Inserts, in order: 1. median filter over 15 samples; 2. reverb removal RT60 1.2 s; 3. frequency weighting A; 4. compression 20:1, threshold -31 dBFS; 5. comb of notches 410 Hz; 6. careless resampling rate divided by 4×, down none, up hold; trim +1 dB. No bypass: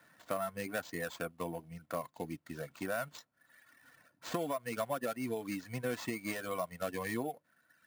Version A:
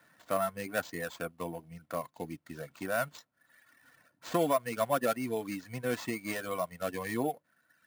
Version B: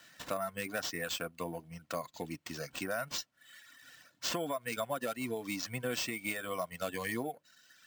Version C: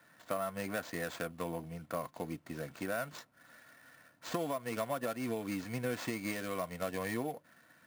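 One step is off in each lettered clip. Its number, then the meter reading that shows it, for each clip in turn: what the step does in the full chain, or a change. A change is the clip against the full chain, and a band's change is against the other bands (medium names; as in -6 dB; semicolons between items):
4, mean gain reduction 2.5 dB; 1, 4 kHz band +9.0 dB; 2, momentary loudness spread change +6 LU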